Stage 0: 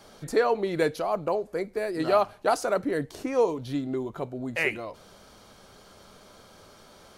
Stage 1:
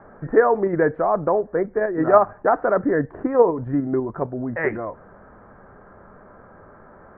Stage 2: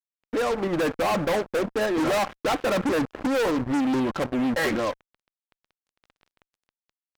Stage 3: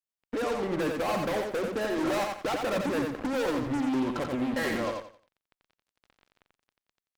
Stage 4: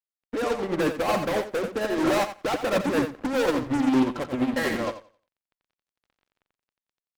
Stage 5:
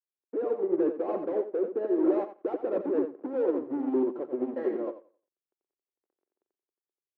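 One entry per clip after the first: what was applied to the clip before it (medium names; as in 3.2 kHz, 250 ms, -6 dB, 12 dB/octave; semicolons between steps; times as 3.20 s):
Chebyshev low-pass 1.8 kHz, order 5; in parallel at +3 dB: level held to a coarse grid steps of 10 dB; on the sum: trim +2.5 dB
fade-in on the opening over 1.16 s; comb 3.7 ms, depth 53%; fuzz box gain 29 dB, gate -36 dBFS; trim -8 dB
compression, threshold -26 dBFS, peak gain reduction 4.5 dB; on a send: feedback delay 88 ms, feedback 27%, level -4 dB; on the sum: trim -2.5 dB
upward expansion 2.5:1, over -37 dBFS; trim +8.5 dB
ladder band-pass 410 Hz, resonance 65%; trim +5 dB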